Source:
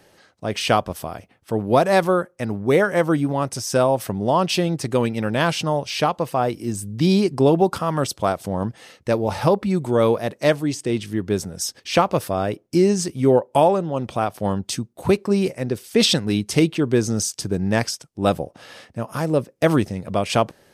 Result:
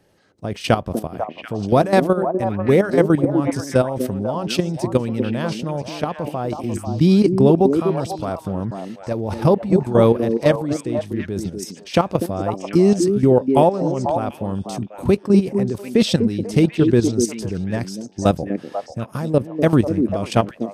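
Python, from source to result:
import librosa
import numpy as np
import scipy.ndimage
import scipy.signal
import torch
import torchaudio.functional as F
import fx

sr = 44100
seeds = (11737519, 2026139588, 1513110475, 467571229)

p1 = fx.low_shelf(x, sr, hz=440.0, db=8.5)
p2 = fx.level_steps(p1, sr, step_db=12)
y = p2 + fx.echo_stepped(p2, sr, ms=246, hz=300.0, octaves=1.4, feedback_pct=70, wet_db=-2.0, dry=0)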